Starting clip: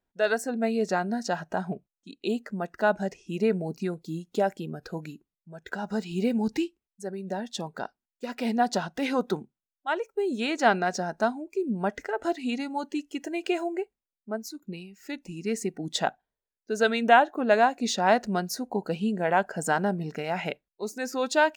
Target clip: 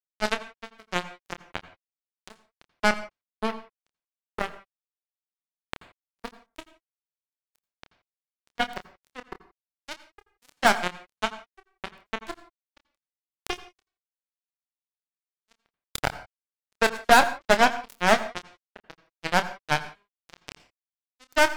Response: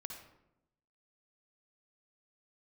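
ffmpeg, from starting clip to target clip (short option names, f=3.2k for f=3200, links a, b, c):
-filter_complex "[0:a]aeval=exprs='0.501*(cos(1*acos(clip(val(0)/0.501,-1,1)))-cos(1*PI/2))+0.00631*(cos(3*acos(clip(val(0)/0.501,-1,1)))-cos(3*PI/2))+0.0316*(cos(6*acos(clip(val(0)/0.501,-1,1)))-cos(6*PI/2))+0.00631*(cos(7*acos(clip(val(0)/0.501,-1,1)))-cos(7*PI/2))':c=same,acrusher=bits=2:mix=0:aa=0.5,asplit=2[a][b];[1:a]atrim=start_sample=2205,afade=t=out:st=0.2:d=0.01,atrim=end_sample=9261,adelay=28[c];[b][c]afir=irnorm=-1:irlink=0,volume=-6dB[d];[a][d]amix=inputs=2:normalize=0,volume=1.5dB"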